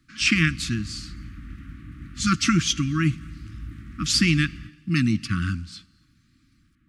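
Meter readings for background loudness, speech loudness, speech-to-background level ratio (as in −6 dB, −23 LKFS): −41.0 LKFS, −23.0 LKFS, 18.0 dB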